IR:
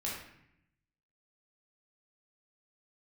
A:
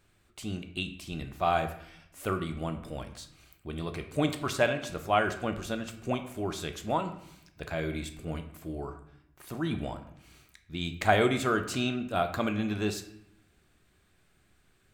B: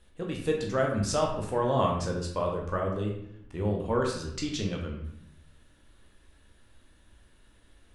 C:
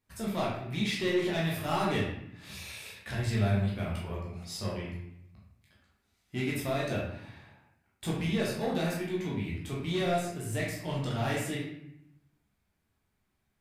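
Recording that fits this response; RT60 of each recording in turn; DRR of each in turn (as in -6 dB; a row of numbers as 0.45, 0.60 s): C; 0.75, 0.75, 0.75 s; 7.0, -1.0, -5.5 dB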